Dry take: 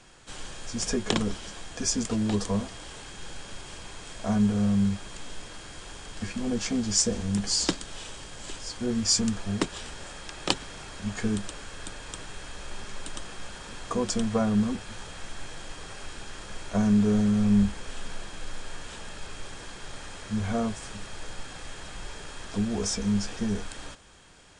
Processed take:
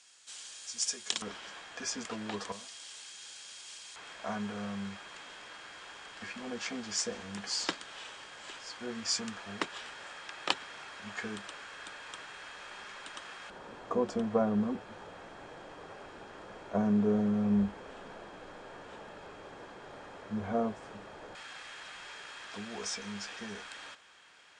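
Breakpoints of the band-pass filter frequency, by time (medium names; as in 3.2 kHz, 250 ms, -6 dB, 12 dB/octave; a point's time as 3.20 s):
band-pass filter, Q 0.73
6.5 kHz
from 1.22 s 1.6 kHz
from 2.52 s 5.6 kHz
from 3.96 s 1.6 kHz
from 13.50 s 570 Hz
from 21.35 s 2 kHz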